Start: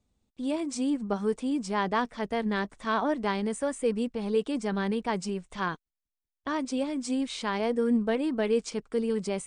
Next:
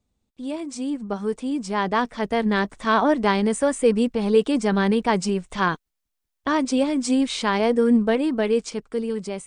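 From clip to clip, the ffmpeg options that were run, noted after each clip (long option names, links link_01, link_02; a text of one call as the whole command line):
ffmpeg -i in.wav -af "dynaudnorm=framelen=800:gausssize=5:maxgain=9dB" out.wav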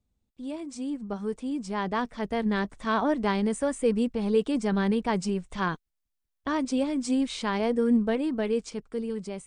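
ffmpeg -i in.wav -af "lowshelf=frequency=190:gain=7,volume=-7.5dB" out.wav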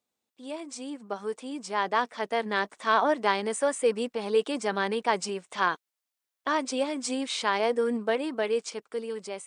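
ffmpeg -i in.wav -af "highpass=500,volume=4.5dB" out.wav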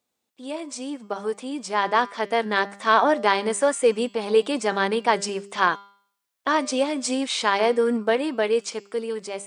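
ffmpeg -i in.wav -af "bandreject=frequency=199.9:width_type=h:width=4,bandreject=frequency=399.8:width_type=h:width=4,bandreject=frequency=599.7:width_type=h:width=4,bandreject=frequency=799.6:width_type=h:width=4,bandreject=frequency=999.5:width_type=h:width=4,bandreject=frequency=1199.4:width_type=h:width=4,bandreject=frequency=1399.3:width_type=h:width=4,bandreject=frequency=1599.2:width_type=h:width=4,bandreject=frequency=1799.1:width_type=h:width=4,bandreject=frequency=1999:width_type=h:width=4,bandreject=frequency=2198.9:width_type=h:width=4,bandreject=frequency=2398.8:width_type=h:width=4,bandreject=frequency=2598.7:width_type=h:width=4,bandreject=frequency=2798.6:width_type=h:width=4,bandreject=frequency=2998.5:width_type=h:width=4,bandreject=frequency=3198.4:width_type=h:width=4,bandreject=frequency=3398.3:width_type=h:width=4,bandreject=frequency=3598.2:width_type=h:width=4,bandreject=frequency=3798.1:width_type=h:width=4,bandreject=frequency=3998:width_type=h:width=4,bandreject=frequency=4197.9:width_type=h:width=4,bandreject=frequency=4397.8:width_type=h:width=4,bandreject=frequency=4597.7:width_type=h:width=4,bandreject=frequency=4797.6:width_type=h:width=4,bandreject=frequency=4997.5:width_type=h:width=4,bandreject=frequency=5197.4:width_type=h:width=4,bandreject=frequency=5397.3:width_type=h:width=4,bandreject=frequency=5597.2:width_type=h:width=4,bandreject=frequency=5797.1:width_type=h:width=4,bandreject=frequency=5997:width_type=h:width=4,bandreject=frequency=6196.9:width_type=h:width=4,bandreject=frequency=6396.8:width_type=h:width=4,bandreject=frequency=6596.7:width_type=h:width=4,bandreject=frequency=6796.6:width_type=h:width=4,bandreject=frequency=6996.5:width_type=h:width=4,bandreject=frequency=7196.4:width_type=h:width=4,bandreject=frequency=7396.3:width_type=h:width=4,bandreject=frequency=7596.2:width_type=h:width=4,bandreject=frequency=7796.1:width_type=h:width=4,volume=5.5dB" out.wav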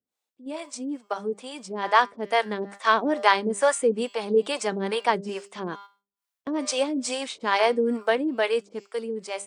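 ffmpeg -i in.wav -filter_complex "[0:a]agate=range=-8dB:threshold=-36dB:ratio=16:detection=peak,acrossover=split=460[link_01][link_02];[link_01]aeval=exprs='val(0)*(1-1/2+1/2*cos(2*PI*2.3*n/s))':channel_layout=same[link_03];[link_02]aeval=exprs='val(0)*(1-1/2-1/2*cos(2*PI*2.3*n/s))':channel_layout=same[link_04];[link_03][link_04]amix=inputs=2:normalize=0,volume=3dB" out.wav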